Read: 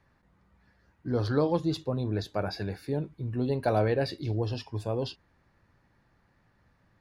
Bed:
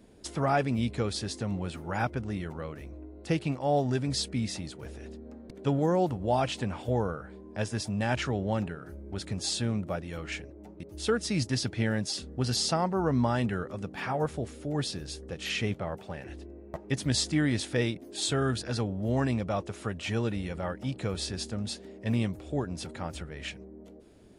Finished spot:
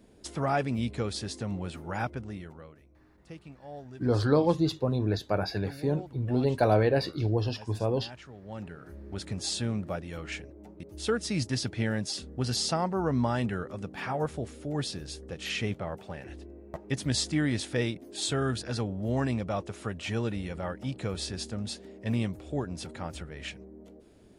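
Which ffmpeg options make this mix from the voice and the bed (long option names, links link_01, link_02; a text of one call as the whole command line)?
ffmpeg -i stem1.wav -i stem2.wav -filter_complex "[0:a]adelay=2950,volume=2.5dB[link_01];[1:a]volume=15dB,afade=type=out:start_time=1.91:duration=0.95:silence=0.158489,afade=type=in:start_time=8.42:duration=0.6:silence=0.149624[link_02];[link_01][link_02]amix=inputs=2:normalize=0" out.wav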